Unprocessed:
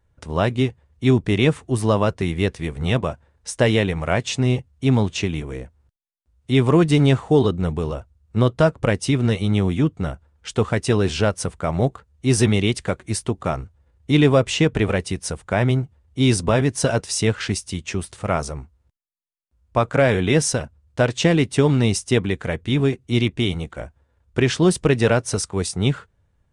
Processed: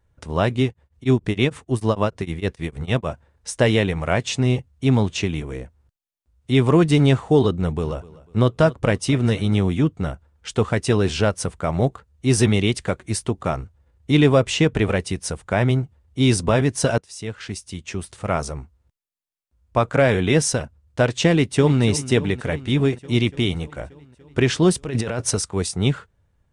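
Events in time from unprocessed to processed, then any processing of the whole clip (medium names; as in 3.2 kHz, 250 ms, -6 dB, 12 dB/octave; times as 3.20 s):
0.67–3.10 s: tremolo of two beating tones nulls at 6.6 Hz
7.60–9.63 s: feedback delay 248 ms, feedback 36%, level -20 dB
16.98–18.48 s: fade in, from -19 dB
21.30–21.82 s: echo throw 290 ms, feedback 75%, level -14.5 dB
24.84–25.31 s: compressor with a negative ratio -24 dBFS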